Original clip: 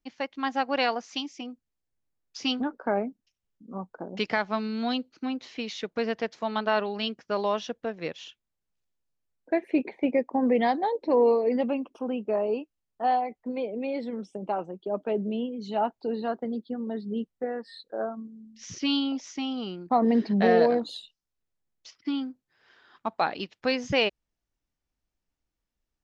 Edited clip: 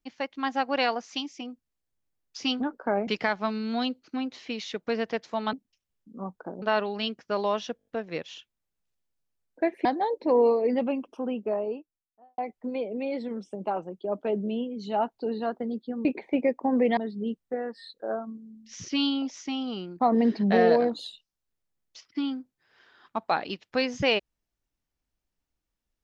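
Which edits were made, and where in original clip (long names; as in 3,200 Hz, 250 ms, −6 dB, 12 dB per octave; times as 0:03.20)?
0:03.07–0:04.16: move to 0:06.62
0:07.77: stutter 0.02 s, 6 plays
0:09.75–0:10.67: move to 0:16.87
0:12.04–0:13.20: fade out and dull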